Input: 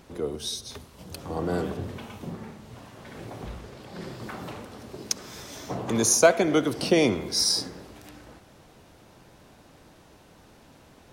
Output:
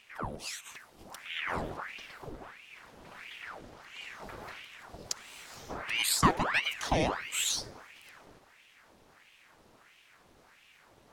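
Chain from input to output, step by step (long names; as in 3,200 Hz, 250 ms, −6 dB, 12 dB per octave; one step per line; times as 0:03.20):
ring modulator whose carrier an LFO sweeps 1,400 Hz, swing 90%, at 1.5 Hz
level −4.5 dB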